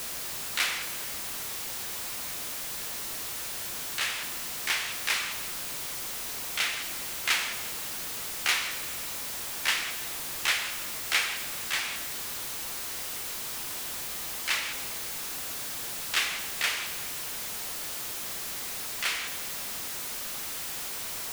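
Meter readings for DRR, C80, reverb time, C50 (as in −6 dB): 8.0 dB, 10.5 dB, 1.9 s, 9.5 dB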